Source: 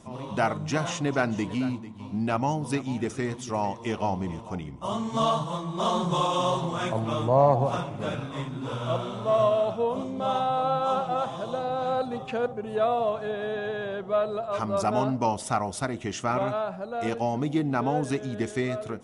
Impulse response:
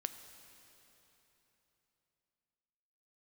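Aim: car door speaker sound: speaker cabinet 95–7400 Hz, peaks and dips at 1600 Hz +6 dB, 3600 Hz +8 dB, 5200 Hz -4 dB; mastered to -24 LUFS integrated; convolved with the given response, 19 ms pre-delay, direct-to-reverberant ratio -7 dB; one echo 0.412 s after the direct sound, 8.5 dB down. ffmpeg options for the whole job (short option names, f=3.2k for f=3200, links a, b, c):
-filter_complex "[0:a]aecho=1:1:412:0.376,asplit=2[a][b];[1:a]atrim=start_sample=2205,adelay=19[c];[b][c]afir=irnorm=-1:irlink=0,volume=8dB[d];[a][d]amix=inputs=2:normalize=0,highpass=95,equalizer=f=1.6k:t=q:w=4:g=6,equalizer=f=3.6k:t=q:w=4:g=8,equalizer=f=5.2k:t=q:w=4:g=-4,lowpass=f=7.4k:w=0.5412,lowpass=f=7.4k:w=1.3066,volume=-5dB"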